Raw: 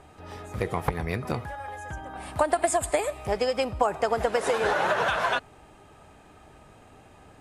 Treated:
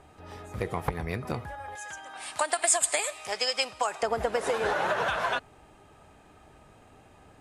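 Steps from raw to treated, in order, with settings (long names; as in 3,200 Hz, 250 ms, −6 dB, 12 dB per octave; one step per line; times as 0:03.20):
0:01.75–0:04.03: meter weighting curve ITU-R 468
level −3 dB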